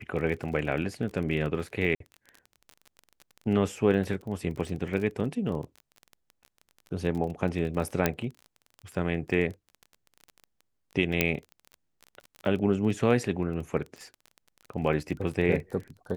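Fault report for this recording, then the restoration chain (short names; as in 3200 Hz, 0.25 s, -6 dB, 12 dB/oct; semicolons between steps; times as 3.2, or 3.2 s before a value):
crackle 26/s -35 dBFS
1.95–2 gap 53 ms
8.06 pop -8 dBFS
11.21 pop -7 dBFS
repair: de-click; interpolate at 1.95, 53 ms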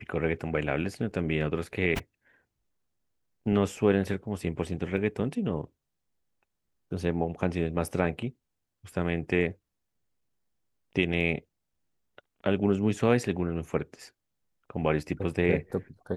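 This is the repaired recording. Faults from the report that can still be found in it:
11.21 pop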